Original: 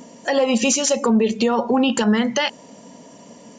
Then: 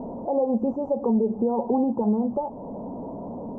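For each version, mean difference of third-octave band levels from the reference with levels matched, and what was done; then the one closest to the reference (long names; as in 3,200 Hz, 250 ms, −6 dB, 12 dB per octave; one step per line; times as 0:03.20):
11.0 dB: linear delta modulator 64 kbit/s, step −28 dBFS
downward compressor 1.5 to 1, threshold −32 dBFS, peak gain reduction 7 dB
elliptic low-pass filter 890 Hz, stop band 50 dB
level +2 dB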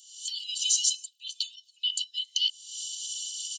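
19.5 dB: camcorder AGC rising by 66 dB per second
Chebyshev high-pass with heavy ripple 2,900 Hz, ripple 6 dB
comb filter 2 ms, depth 65%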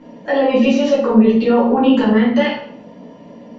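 6.0 dB: low-pass filter 4,400 Hz 24 dB per octave
high-shelf EQ 3,400 Hz −11.5 dB
rectangular room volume 120 cubic metres, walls mixed, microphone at 2.2 metres
level −5 dB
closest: third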